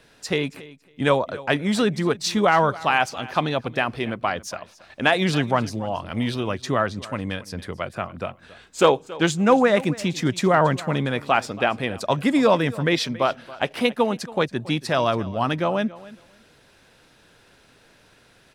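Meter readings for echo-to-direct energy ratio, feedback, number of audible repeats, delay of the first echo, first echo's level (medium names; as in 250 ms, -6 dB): -19.0 dB, 17%, 2, 277 ms, -19.0 dB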